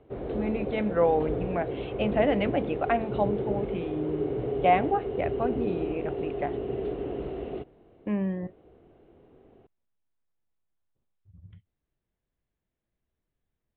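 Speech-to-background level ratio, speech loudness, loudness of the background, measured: 3.0 dB, −29.5 LKFS, −32.5 LKFS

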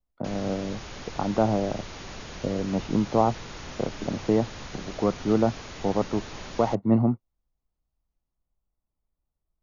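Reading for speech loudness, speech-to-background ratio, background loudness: −27.0 LKFS, 13.0 dB, −40.0 LKFS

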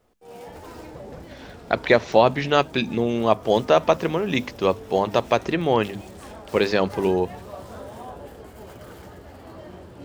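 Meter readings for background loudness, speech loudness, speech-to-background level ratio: −41.5 LKFS, −21.5 LKFS, 20.0 dB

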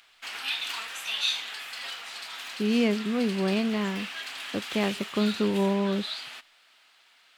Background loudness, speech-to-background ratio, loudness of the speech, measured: −34.0 LKFS, 6.0 dB, −28.0 LKFS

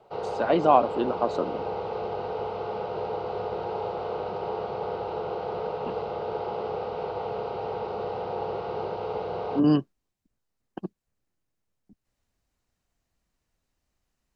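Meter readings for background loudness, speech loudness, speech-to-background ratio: −32.0 LKFS, −24.5 LKFS, 7.5 dB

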